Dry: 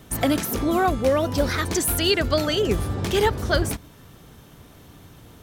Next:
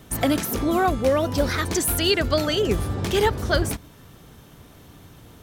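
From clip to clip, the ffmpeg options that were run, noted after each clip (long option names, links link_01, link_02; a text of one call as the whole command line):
ffmpeg -i in.wav -af anull out.wav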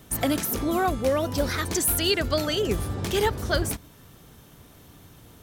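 ffmpeg -i in.wav -af "highshelf=frequency=6500:gain=5.5,volume=-3.5dB" out.wav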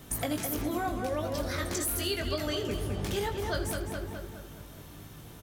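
ffmpeg -i in.wav -filter_complex "[0:a]asplit=2[link_01][link_02];[link_02]adelay=209,lowpass=frequency=3400:poles=1,volume=-6.5dB,asplit=2[link_03][link_04];[link_04]adelay=209,lowpass=frequency=3400:poles=1,volume=0.48,asplit=2[link_05][link_06];[link_06]adelay=209,lowpass=frequency=3400:poles=1,volume=0.48,asplit=2[link_07][link_08];[link_08]adelay=209,lowpass=frequency=3400:poles=1,volume=0.48,asplit=2[link_09][link_10];[link_10]adelay=209,lowpass=frequency=3400:poles=1,volume=0.48,asplit=2[link_11][link_12];[link_12]adelay=209,lowpass=frequency=3400:poles=1,volume=0.48[link_13];[link_03][link_05][link_07][link_09][link_11][link_13]amix=inputs=6:normalize=0[link_14];[link_01][link_14]amix=inputs=2:normalize=0,acompressor=threshold=-33dB:ratio=3,asplit=2[link_15][link_16];[link_16]aecho=0:1:20|80:0.501|0.237[link_17];[link_15][link_17]amix=inputs=2:normalize=0" out.wav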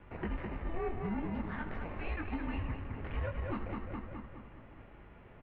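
ffmpeg -i in.wav -filter_complex "[0:a]asplit=2[link_01][link_02];[link_02]acrusher=samples=24:mix=1:aa=0.000001,volume=-4dB[link_03];[link_01][link_03]amix=inputs=2:normalize=0,asoftclip=type=tanh:threshold=-25.5dB,highpass=frequency=260:width_type=q:width=0.5412,highpass=frequency=260:width_type=q:width=1.307,lowpass=frequency=2700:width_type=q:width=0.5176,lowpass=frequency=2700:width_type=q:width=0.7071,lowpass=frequency=2700:width_type=q:width=1.932,afreqshift=-340,volume=-3dB" out.wav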